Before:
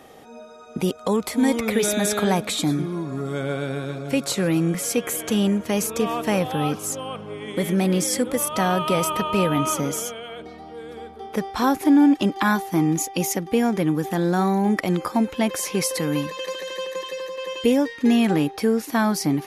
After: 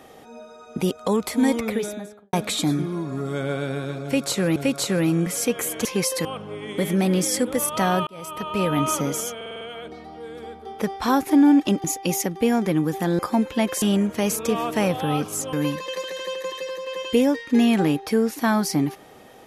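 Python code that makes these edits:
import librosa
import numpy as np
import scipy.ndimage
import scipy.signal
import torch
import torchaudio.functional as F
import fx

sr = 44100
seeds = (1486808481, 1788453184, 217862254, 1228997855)

y = fx.studio_fade_out(x, sr, start_s=1.4, length_s=0.93)
y = fx.edit(y, sr, fx.repeat(start_s=4.04, length_s=0.52, count=2),
    fx.swap(start_s=5.33, length_s=1.71, other_s=15.64, other_length_s=0.4),
    fx.fade_in_span(start_s=8.86, length_s=0.73),
    fx.stutter(start_s=10.15, slice_s=0.05, count=6),
    fx.cut(start_s=12.38, length_s=0.57),
    fx.cut(start_s=14.3, length_s=0.71), tone=tone)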